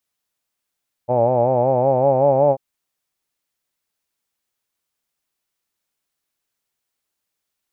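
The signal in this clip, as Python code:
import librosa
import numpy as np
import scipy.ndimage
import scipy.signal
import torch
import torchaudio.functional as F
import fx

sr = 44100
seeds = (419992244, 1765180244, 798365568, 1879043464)

y = fx.vowel(sr, seeds[0], length_s=1.49, word='hawed', hz=119.0, glide_st=3.0, vibrato_hz=5.3, vibrato_st=0.9)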